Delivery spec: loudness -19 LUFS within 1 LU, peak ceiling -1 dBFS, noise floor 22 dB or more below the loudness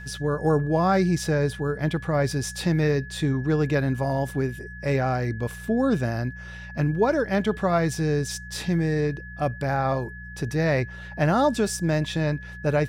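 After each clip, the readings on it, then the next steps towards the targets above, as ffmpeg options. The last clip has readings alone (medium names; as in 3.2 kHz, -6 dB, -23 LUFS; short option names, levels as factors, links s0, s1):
hum 60 Hz; highest harmonic 180 Hz; hum level -38 dBFS; steady tone 1.7 kHz; tone level -40 dBFS; loudness -25.0 LUFS; peak level -11.0 dBFS; loudness target -19.0 LUFS
-> -af "bandreject=f=60:t=h:w=4,bandreject=f=120:t=h:w=4,bandreject=f=180:t=h:w=4"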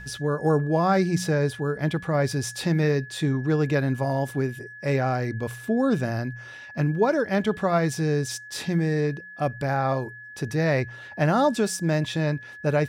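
hum not found; steady tone 1.7 kHz; tone level -40 dBFS
-> -af "bandreject=f=1700:w=30"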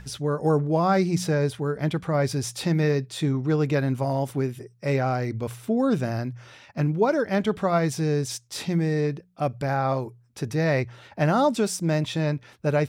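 steady tone not found; loudness -25.0 LUFS; peak level -11.0 dBFS; loudness target -19.0 LUFS
-> -af "volume=2"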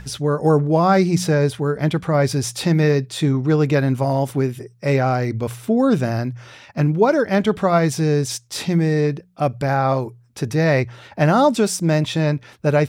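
loudness -19.0 LUFS; peak level -5.0 dBFS; noise floor -49 dBFS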